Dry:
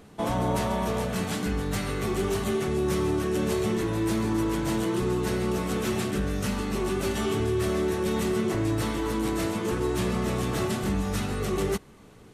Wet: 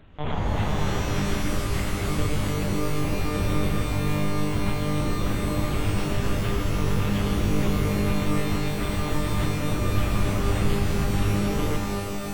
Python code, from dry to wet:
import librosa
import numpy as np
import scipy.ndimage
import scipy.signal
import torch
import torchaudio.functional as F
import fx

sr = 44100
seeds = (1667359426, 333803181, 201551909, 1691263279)

y = fx.lowpass(x, sr, hz=2200.0, slope=6)
y = fx.tilt_shelf(y, sr, db=-8.0, hz=1400.0)
y = fx.lpc_monotone(y, sr, seeds[0], pitch_hz=150.0, order=10)
y = fx.low_shelf(y, sr, hz=210.0, db=9.5)
y = fx.rev_shimmer(y, sr, seeds[1], rt60_s=3.3, semitones=12, shimmer_db=-2, drr_db=3.5)